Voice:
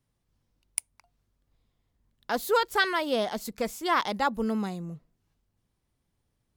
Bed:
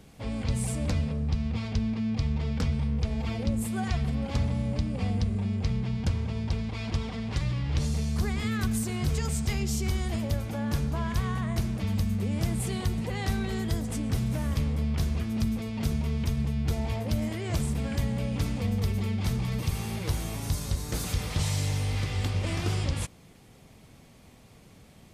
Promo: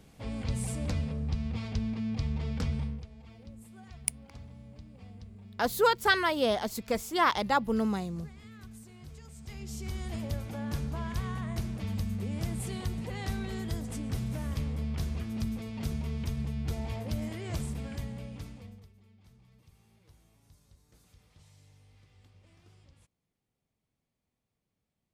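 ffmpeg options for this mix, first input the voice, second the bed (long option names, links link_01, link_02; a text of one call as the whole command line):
ffmpeg -i stem1.wav -i stem2.wav -filter_complex "[0:a]adelay=3300,volume=0dB[link_01];[1:a]volume=11dB,afade=type=out:start_time=2.8:duration=0.26:silence=0.149624,afade=type=in:start_time=9.35:duration=0.89:silence=0.177828,afade=type=out:start_time=17.5:duration=1.39:silence=0.0501187[link_02];[link_01][link_02]amix=inputs=2:normalize=0" out.wav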